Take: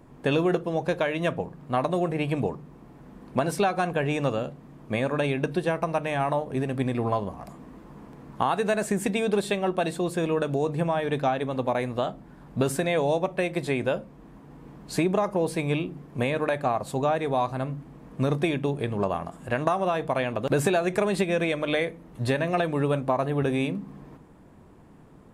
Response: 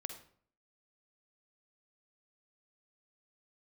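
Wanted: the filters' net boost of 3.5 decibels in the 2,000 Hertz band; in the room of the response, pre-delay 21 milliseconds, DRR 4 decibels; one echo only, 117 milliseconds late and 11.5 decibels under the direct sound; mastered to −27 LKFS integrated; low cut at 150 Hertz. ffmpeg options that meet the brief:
-filter_complex "[0:a]highpass=150,equalizer=frequency=2000:width_type=o:gain=4.5,aecho=1:1:117:0.266,asplit=2[link_01][link_02];[1:a]atrim=start_sample=2205,adelay=21[link_03];[link_02][link_03]afir=irnorm=-1:irlink=0,volume=-2dB[link_04];[link_01][link_04]amix=inputs=2:normalize=0,volume=-2dB"

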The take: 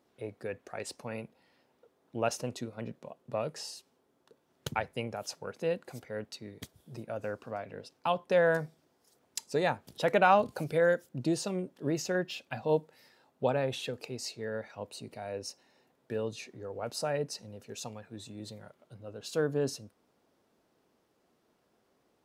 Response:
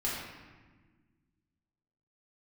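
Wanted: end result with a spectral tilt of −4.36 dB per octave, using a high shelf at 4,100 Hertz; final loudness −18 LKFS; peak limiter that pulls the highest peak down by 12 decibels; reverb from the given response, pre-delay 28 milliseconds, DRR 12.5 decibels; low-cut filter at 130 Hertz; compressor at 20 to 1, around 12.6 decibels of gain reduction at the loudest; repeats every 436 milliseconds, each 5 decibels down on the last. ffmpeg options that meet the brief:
-filter_complex "[0:a]highpass=130,highshelf=frequency=4100:gain=-4.5,acompressor=threshold=-32dB:ratio=20,alimiter=level_in=6dB:limit=-24dB:level=0:latency=1,volume=-6dB,aecho=1:1:436|872|1308|1744|2180|2616|3052:0.562|0.315|0.176|0.0988|0.0553|0.031|0.0173,asplit=2[link_01][link_02];[1:a]atrim=start_sample=2205,adelay=28[link_03];[link_02][link_03]afir=irnorm=-1:irlink=0,volume=-18.5dB[link_04];[link_01][link_04]amix=inputs=2:normalize=0,volume=23.5dB"

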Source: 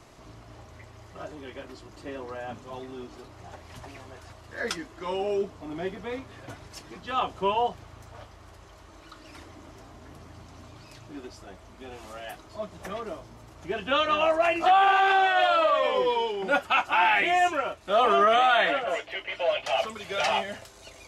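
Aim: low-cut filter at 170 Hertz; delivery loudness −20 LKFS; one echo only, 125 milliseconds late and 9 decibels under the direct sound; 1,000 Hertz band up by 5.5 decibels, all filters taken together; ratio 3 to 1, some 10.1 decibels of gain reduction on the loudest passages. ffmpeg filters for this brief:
ffmpeg -i in.wav -af "highpass=170,equalizer=frequency=1000:width_type=o:gain=8,acompressor=threshold=-26dB:ratio=3,aecho=1:1:125:0.355,volume=8.5dB" out.wav

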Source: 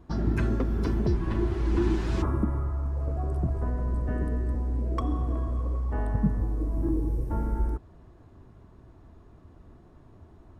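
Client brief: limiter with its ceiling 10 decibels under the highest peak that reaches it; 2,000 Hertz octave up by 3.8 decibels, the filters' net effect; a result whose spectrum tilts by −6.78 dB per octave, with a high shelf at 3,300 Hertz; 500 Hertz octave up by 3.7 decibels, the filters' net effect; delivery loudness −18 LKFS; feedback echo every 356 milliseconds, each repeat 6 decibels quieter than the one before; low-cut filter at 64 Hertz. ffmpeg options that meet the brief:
ffmpeg -i in.wav -af "highpass=64,equalizer=frequency=500:width_type=o:gain=5.5,equalizer=frequency=2000:width_type=o:gain=6,highshelf=frequency=3300:gain=-5,alimiter=limit=-22dB:level=0:latency=1,aecho=1:1:356|712|1068|1424|1780|2136:0.501|0.251|0.125|0.0626|0.0313|0.0157,volume=13dB" out.wav

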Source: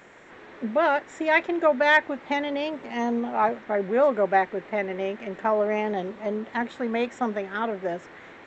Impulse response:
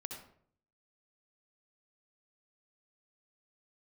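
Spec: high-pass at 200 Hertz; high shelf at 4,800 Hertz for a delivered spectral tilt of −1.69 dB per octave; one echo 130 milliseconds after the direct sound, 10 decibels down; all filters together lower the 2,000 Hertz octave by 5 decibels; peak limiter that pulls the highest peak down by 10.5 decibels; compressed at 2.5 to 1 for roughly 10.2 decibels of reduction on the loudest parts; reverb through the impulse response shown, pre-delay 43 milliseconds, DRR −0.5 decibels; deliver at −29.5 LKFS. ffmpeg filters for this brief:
-filter_complex "[0:a]highpass=200,equalizer=frequency=2000:width_type=o:gain=-5,highshelf=frequency=4800:gain=-6.5,acompressor=threshold=-32dB:ratio=2.5,alimiter=level_in=5.5dB:limit=-24dB:level=0:latency=1,volume=-5.5dB,aecho=1:1:130:0.316,asplit=2[link_01][link_02];[1:a]atrim=start_sample=2205,adelay=43[link_03];[link_02][link_03]afir=irnorm=-1:irlink=0,volume=2.5dB[link_04];[link_01][link_04]amix=inputs=2:normalize=0,volume=5.5dB"

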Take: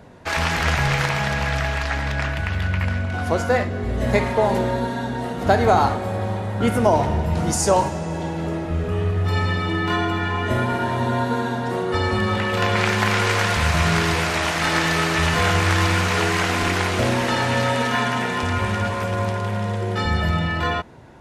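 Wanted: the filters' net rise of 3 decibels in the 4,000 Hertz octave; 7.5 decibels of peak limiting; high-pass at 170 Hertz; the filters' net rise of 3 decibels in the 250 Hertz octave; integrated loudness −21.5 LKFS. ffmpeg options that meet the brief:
ffmpeg -i in.wav -af "highpass=170,equalizer=frequency=250:width_type=o:gain=5.5,equalizer=frequency=4000:width_type=o:gain=4,alimiter=limit=-10.5dB:level=0:latency=1" out.wav

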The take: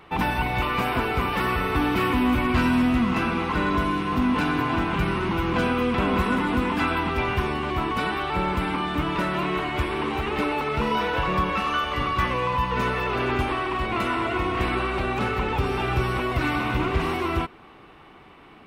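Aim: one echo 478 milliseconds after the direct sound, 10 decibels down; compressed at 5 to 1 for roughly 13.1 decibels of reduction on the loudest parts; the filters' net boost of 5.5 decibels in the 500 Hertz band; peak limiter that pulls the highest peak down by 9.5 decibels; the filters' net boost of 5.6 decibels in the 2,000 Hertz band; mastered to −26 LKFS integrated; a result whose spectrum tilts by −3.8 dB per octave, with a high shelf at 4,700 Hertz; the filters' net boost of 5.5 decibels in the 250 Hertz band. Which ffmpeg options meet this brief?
ffmpeg -i in.wav -af "equalizer=frequency=250:width_type=o:gain=5,equalizer=frequency=500:width_type=o:gain=5,equalizer=frequency=2000:width_type=o:gain=6.5,highshelf=frequency=4700:gain=3.5,acompressor=threshold=-28dB:ratio=5,alimiter=level_in=3.5dB:limit=-24dB:level=0:latency=1,volume=-3.5dB,aecho=1:1:478:0.316,volume=9dB" out.wav

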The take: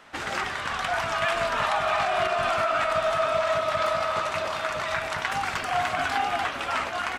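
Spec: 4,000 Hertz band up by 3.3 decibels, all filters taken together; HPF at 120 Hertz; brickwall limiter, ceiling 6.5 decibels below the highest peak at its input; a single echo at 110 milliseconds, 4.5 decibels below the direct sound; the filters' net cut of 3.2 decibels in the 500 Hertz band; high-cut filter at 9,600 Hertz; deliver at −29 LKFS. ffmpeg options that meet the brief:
ffmpeg -i in.wav -af "highpass=120,lowpass=9600,equalizer=frequency=500:width_type=o:gain=-5,equalizer=frequency=4000:width_type=o:gain=4.5,alimiter=limit=-18dB:level=0:latency=1,aecho=1:1:110:0.596,volume=-3dB" out.wav

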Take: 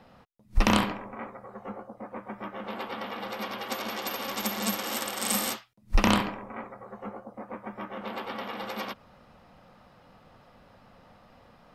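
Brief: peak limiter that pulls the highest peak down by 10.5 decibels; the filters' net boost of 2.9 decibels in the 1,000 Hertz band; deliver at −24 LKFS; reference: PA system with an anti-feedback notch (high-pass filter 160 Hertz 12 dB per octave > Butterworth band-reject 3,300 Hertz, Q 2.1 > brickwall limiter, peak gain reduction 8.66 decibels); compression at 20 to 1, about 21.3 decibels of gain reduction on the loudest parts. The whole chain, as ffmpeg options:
ffmpeg -i in.wav -af "equalizer=frequency=1000:width_type=o:gain=3.5,acompressor=threshold=-37dB:ratio=20,alimiter=level_in=10.5dB:limit=-24dB:level=0:latency=1,volume=-10.5dB,highpass=160,asuperstop=centerf=3300:order=8:qfactor=2.1,volume=27.5dB,alimiter=limit=-13.5dB:level=0:latency=1" out.wav

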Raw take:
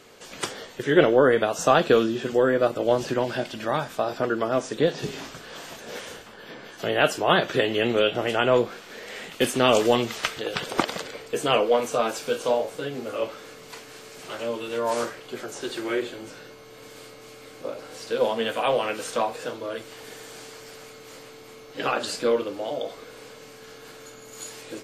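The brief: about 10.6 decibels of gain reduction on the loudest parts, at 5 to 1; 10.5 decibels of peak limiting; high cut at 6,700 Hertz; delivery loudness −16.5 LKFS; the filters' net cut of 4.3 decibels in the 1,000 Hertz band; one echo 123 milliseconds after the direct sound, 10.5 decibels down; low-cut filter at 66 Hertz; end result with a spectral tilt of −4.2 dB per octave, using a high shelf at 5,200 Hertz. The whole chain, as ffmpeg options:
ffmpeg -i in.wav -af "highpass=66,lowpass=6700,equalizer=frequency=1000:width_type=o:gain=-6,highshelf=frequency=5200:gain=-3.5,acompressor=threshold=-26dB:ratio=5,alimiter=limit=-22.5dB:level=0:latency=1,aecho=1:1:123:0.299,volume=18dB" out.wav

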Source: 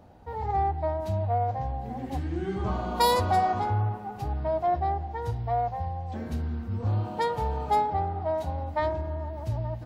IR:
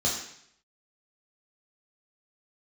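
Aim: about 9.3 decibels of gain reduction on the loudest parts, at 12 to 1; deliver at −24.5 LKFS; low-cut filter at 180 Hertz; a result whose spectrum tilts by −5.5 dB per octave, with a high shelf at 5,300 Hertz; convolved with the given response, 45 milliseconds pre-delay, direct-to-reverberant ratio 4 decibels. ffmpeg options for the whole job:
-filter_complex "[0:a]highpass=180,highshelf=frequency=5300:gain=5,acompressor=threshold=-28dB:ratio=12,asplit=2[link_01][link_02];[1:a]atrim=start_sample=2205,adelay=45[link_03];[link_02][link_03]afir=irnorm=-1:irlink=0,volume=-13.5dB[link_04];[link_01][link_04]amix=inputs=2:normalize=0,volume=7.5dB"

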